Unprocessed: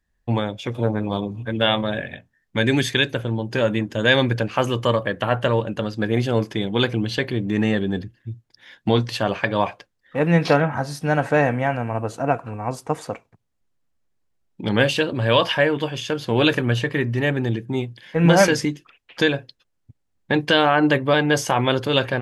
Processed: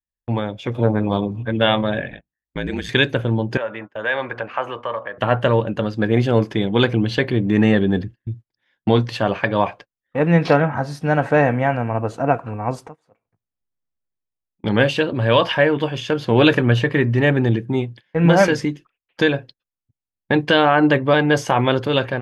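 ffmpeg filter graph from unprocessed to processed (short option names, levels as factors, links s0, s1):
-filter_complex "[0:a]asettb=1/sr,asplit=3[s0][s1][s2];[s0]atrim=end=2.104[s3];[s1]atrim=start=2.1:end=2.89,asetpts=PTS-STARTPTS,afade=t=in:d=0.004:c=qsin,afade=t=out:st=0.786:d=0.004:c=qsin,acompressor=threshold=0.0355:ratio=2:attack=3.2:release=140:knee=1:detection=peak,aeval=exprs='val(0)*sin(2*PI*54*n/s)':c=same[s4];[s2]atrim=start=2.886[s5];[s3][s4]acrossfade=d=0.004:c1=hsin:c2=qsin[s6];[s6][s5]acrossfade=d=0.004:c1=qsin:c2=hsin,asettb=1/sr,asplit=3[s7][s8][s9];[s7]atrim=end=3.574[s10];[s8]atrim=start=3.57:end=5.18,asetpts=PTS-STARTPTS,afade=t=in:d=0.004:c=qsin,afade=t=out:st=1.606:d=0.004:c=qsin,acrossover=split=550 2500:gain=0.112 1 0.126[s11][s12][s13];[s11][s12][s13]amix=inputs=3:normalize=0,bandreject=f=120.5:t=h:w=4,bandreject=f=241:t=h:w=4,bandreject=f=361.5:t=h:w=4,bandreject=f=482:t=h:w=4,bandreject=f=602.5:t=h:w=4,bandreject=f=723:t=h:w=4,bandreject=f=843.5:t=h:w=4,bandreject=f=964:t=h:w=4,bandreject=f=1084.5:t=h:w=4,bandreject=f=1205:t=h:w=4,bandreject=f=1325.5:t=h:w=4,bandreject=f=1446:t=h:w=4,acompressor=threshold=0.0178:ratio=1.5:attack=3.2:release=140:knee=1:detection=peak[s14];[s9]atrim=start=5.176[s15];[s10][s14]acrossfade=d=0.004:c1=hsin:c2=qsin[s16];[s16][s15]acrossfade=d=0.004:c1=qsin:c2=hsin,asettb=1/sr,asplit=3[s17][s18][s19];[s17]atrim=end=12.884[s20];[s18]atrim=start=12.88:end=14.64,asetpts=PTS-STARTPTS,afade=t=in:d=0.004:c=qsin,afade=t=out:st=1.756:d=0.004:c=qsin,acompressor=threshold=0.00398:ratio=2.5:attack=3.2:release=140:knee=1:detection=peak,asplit=2[s21][s22];[s22]adelay=19,volume=0.224[s23];[s21][s23]amix=inputs=2:normalize=0,atrim=end_sample=77616[s24];[s19]atrim=start=14.636[s25];[s20][s24]acrossfade=d=0.004:c1=hsin:c2=qsin[s26];[s26][s25]acrossfade=d=0.004:c1=qsin:c2=hsin,agate=range=0.0794:threshold=0.0112:ratio=16:detection=peak,highshelf=f=4900:g=-12,dynaudnorm=f=270:g=5:m=3.76,volume=0.891"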